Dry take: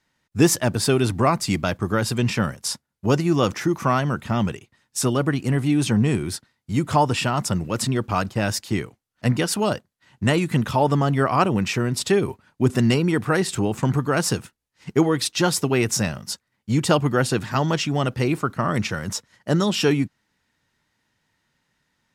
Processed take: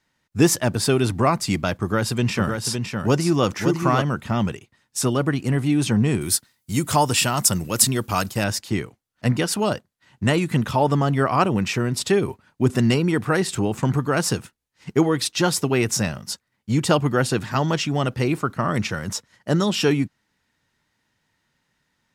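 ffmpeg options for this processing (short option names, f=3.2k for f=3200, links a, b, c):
-filter_complex "[0:a]asettb=1/sr,asplit=3[a][b][c];[a]atrim=end=1.764[d];[b]atrim=start=1.76:end=4.02,asetpts=PTS-STARTPTS,afade=t=in:d=0.004:c=qsin,afade=t=out:st=2.256:d=0.004:c=qsin,aecho=1:1:560:0.531,atrim=end_sample=99666[e];[c]atrim=start=4.016[f];[d][e]acrossfade=d=0.004:c1=hsin:c2=qsin[g];[g][f]acrossfade=d=0.004:c1=qsin:c2=hsin,asettb=1/sr,asplit=3[h][i][j];[h]atrim=end=6.214[k];[i]atrim=start=6.21:end=8.44,asetpts=PTS-STARTPTS,afade=t=in:d=0.004:c=qsin,afade=t=out:st=2.226:d=0.004:c=qsin,aemphasis=mode=production:type=75fm[l];[j]atrim=start=8.436[m];[k][l]acrossfade=d=0.004:c1=hsin:c2=qsin[n];[n][m]acrossfade=d=0.004:c1=qsin:c2=hsin"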